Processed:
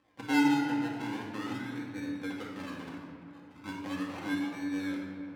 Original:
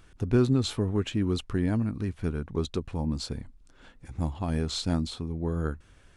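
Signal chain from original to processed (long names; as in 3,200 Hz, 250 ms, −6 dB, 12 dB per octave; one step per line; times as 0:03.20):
tuned comb filter 250 Hz, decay 0.45 s, harmonics odd, mix 90%
sample-and-hold swept by an LFO 35×, swing 60% 0.33 Hz
on a send: delay with a low-pass on its return 391 ms, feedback 54%, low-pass 2,000 Hz, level −14 dB
on the sum: speed change +15%
bass and treble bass +6 dB, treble −7 dB
rectangular room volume 1,500 cubic metres, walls mixed, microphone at 2.1 metres
in parallel at −3 dB: downward compressor, threshold −41 dBFS, peak gain reduction 20 dB
on the sum: meter weighting curve A
level +4 dB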